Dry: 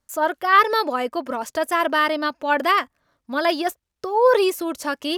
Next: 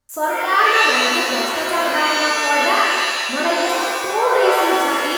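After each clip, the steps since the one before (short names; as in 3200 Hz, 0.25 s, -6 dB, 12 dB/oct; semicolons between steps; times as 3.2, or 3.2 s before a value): in parallel at -2 dB: compressor, threshold -25 dBFS, peak gain reduction 14.5 dB; on the sum: shimmer reverb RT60 1.8 s, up +7 st, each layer -2 dB, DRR -4 dB; gain -6.5 dB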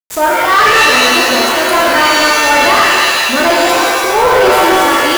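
level-crossing sampler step -29.5 dBFS; sample leveller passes 3; gain -1 dB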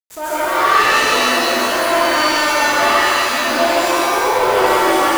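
plate-style reverb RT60 1.2 s, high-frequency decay 0.8×, pre-delay 0.115 s, DRR -8 dB; gain -13.5 dB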